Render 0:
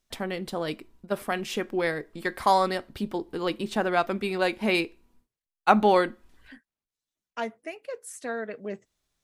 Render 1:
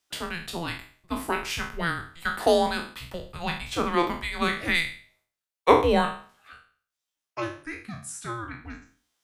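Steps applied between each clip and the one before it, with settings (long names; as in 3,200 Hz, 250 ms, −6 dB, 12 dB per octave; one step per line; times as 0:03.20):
peak hold with a decay on every bin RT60 0.45 s
high-pass filter 690 Hz 12 dB per octave
frequency shifter −340 Hz
level +2 dB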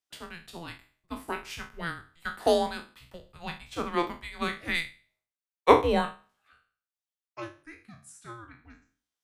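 expander for the loud parts 1.5 to 1, over −40 dBFS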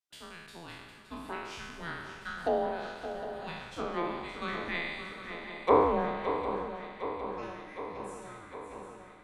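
peak hold with a decay on every bin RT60 1.27 s
treble cut that deepens with the level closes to 1,400 Hz, closed at −18.5 dBFS
on a send: feedback echo with a long and a short gap by turns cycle 758 ms, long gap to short 3 to 1, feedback 63%, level −10 dB
on the sum: level −8 dB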